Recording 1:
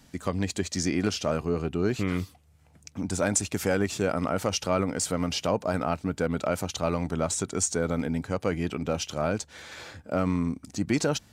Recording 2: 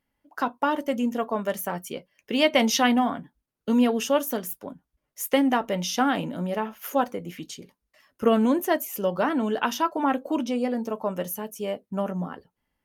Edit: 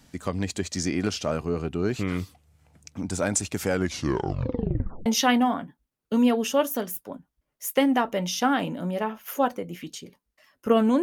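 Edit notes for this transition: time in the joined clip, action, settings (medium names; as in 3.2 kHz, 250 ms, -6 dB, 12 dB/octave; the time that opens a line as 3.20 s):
recording 1
3.72 s: tape stop 1.34 s
5.06 s: go over to recording 2 from 2.62 s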